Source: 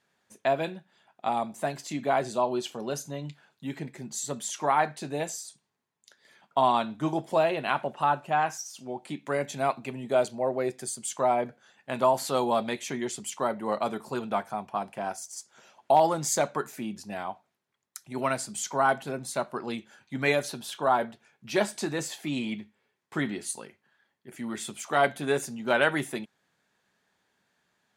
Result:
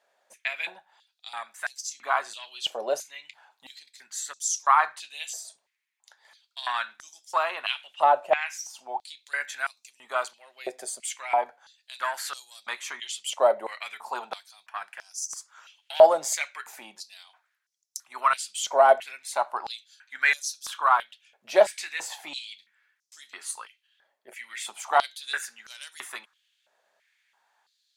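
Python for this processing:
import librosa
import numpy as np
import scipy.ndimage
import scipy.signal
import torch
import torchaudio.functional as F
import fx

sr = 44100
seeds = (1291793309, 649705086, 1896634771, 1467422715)

y = fx.diode_clip(x, sr, knee_db=-10.0)
y = fx.filter_held_highpass(y, sr, hz=3.0, low_hz=610.0, high_hz=5700.0)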